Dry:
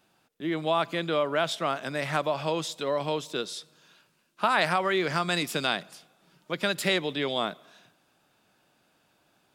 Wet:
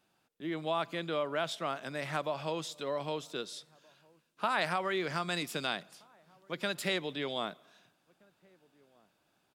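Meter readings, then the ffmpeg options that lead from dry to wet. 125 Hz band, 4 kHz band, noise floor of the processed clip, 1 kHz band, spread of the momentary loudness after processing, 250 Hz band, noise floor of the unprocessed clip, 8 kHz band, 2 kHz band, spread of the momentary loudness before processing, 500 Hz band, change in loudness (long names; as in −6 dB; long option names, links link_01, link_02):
−7.0 dB, −7.0 dB, −75 dBFS, −7.0 dB, 8 LU, −7.0 dB, −68 dBFS, −7.0 dB, −7.0 dB, 8 LU, −7.0 dB, −7.0 dB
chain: -filter_complex "[0:a]asplit=2[link_01][link_02];[link_02]adelay=1574,volume=-28dB,highshelf=frequency=4000:gain=-35.4[link_03];[link_01][link_03]amix=inputs=2:normalize=0,volume=-7dB"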